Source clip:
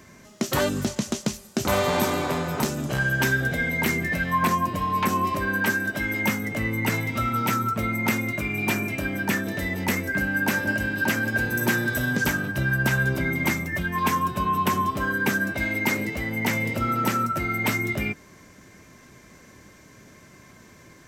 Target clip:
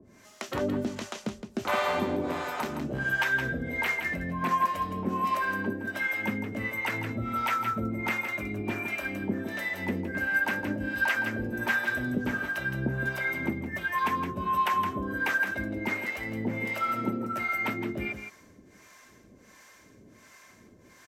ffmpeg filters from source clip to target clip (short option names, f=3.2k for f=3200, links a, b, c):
-filter_complex "[0:a]equalizer=f=150:t=o:w=0.51:g=-5.5,acrossover=split=170|3400[a][b][c];[a]flanger=delay=8.3:depth=5.1:regen=-65:speed=0.14:shape=triangular[d];[c]acompressor=threshold=-47dB:ratio=5[e];[d][b][e]amix=inputs=3:normalize=0,acrossover=split=580[f][g];[f]aeval=exprs='val(0)*(1-1/2+1/2*cos(2*PI*1.4*n/s))':c=same[h];[g]aeval=exprs='val(0)*(1-1/2-1/2*cos(2*PI*1.4*n/s))':c=same[i];[h][i]amix=inputs=2:normalize=0,aecho=1:1:166:0.398"